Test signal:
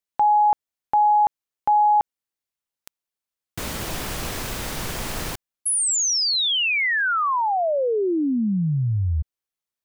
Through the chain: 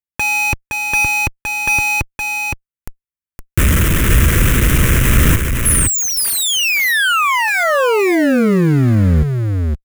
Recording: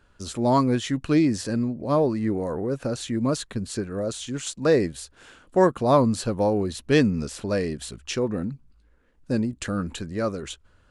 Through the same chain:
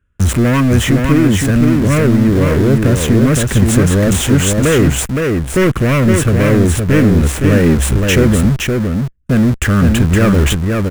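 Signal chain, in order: bell 67 Hz +11 dB 2.2 oct; sample leveller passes 5; fixed phaser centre 1900 Hz, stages 4; in parallel at -10.5 dB: Schmitt trigger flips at -25 dBFS; on the sum: vocal rider within 4 dB 0.5 s; on a send: echo 0.516 s -4 dB; on the sum: gain -2 dB

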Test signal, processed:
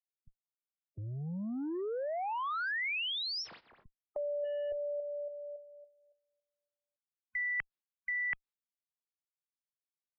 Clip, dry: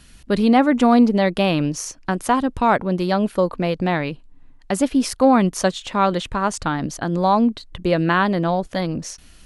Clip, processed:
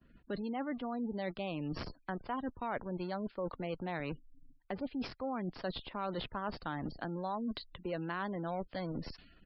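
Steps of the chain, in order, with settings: in parallel at -10 dB: Schmitt trigger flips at -23 dBFS; on the sum: downsampling 11025 Hz; expander -40 dBFS; reverse; compressor 10:1, threshold -28 dBFS; reverse; spectral gate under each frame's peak -30 dB strong; low-pass opened by the level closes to 920 Hz, open at -30 dBFS; low shelf 210 Hz -6 dB; three-band squash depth 40%; gain -5.5 dB

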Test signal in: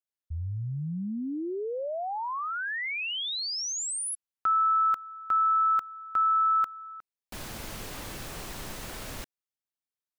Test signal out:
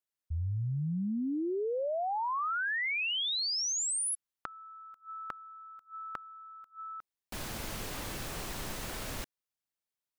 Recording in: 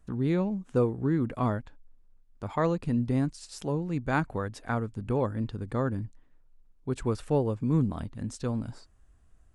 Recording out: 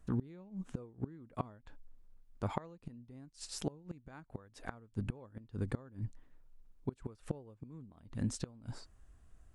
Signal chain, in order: flipped gate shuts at -23 dBFS, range -26 dB

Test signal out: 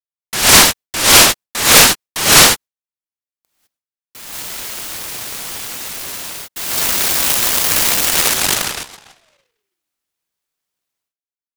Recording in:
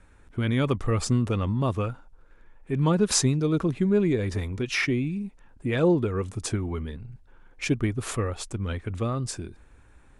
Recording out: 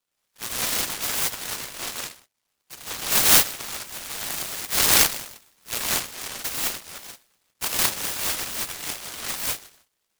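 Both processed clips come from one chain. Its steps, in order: gate with hold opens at -39 dBFS; steep high-pass 1400 Hz 36 dB/oct; non-linear reverb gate 0.23 s rising, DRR -7.5 dB; noise-modulated delay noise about 2200 Hz, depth 0.32 ms; gain +4 dB

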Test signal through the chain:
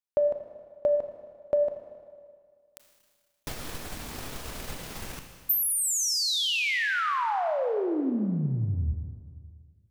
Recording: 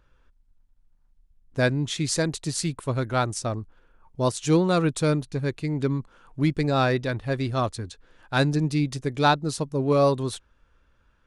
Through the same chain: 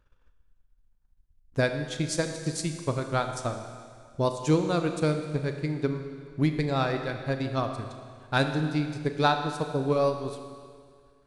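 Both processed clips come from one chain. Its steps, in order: transient shaper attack +7 dB, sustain -9 dB; Schroeder reverb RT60 2 s, combs from 26 ms, DRR 6 dB; gain -6.5 dB

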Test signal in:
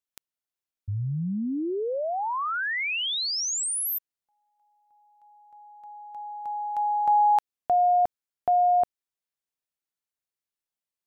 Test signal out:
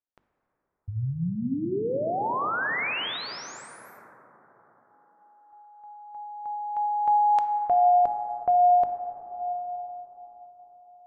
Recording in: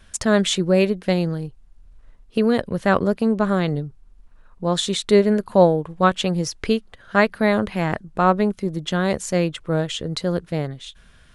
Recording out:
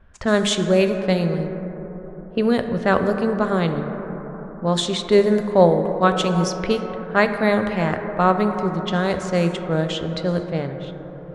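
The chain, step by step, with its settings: notches 50/100/150/200/250/300/350 Hz; plate-style reverb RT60 4.9 s, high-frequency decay 0.25×, DRR 6.5 dB; low-pass opened by the level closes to 1200 Hz, open at -14.5 dBFS

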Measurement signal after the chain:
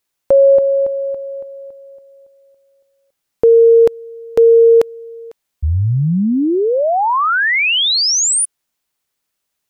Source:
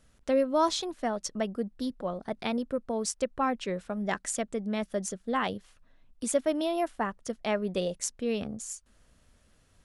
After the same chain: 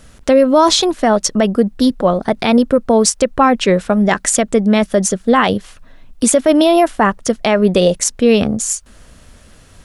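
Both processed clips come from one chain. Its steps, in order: maximiser +21 dB; gain -1 dB

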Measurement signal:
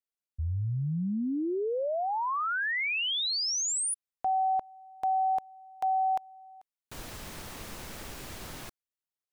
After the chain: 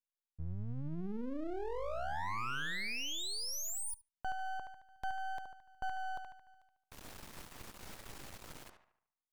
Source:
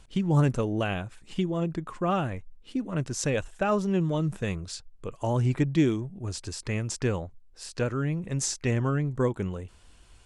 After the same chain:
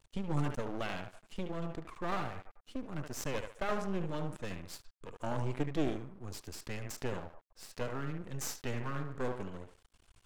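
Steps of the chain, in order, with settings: narrowing echo 73 ms, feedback 49%, band-pass 1000 Hz, level -5 dB; half-wave rectifier; vibrato 0.44 Hz 11 cents; gain -5.5 dB

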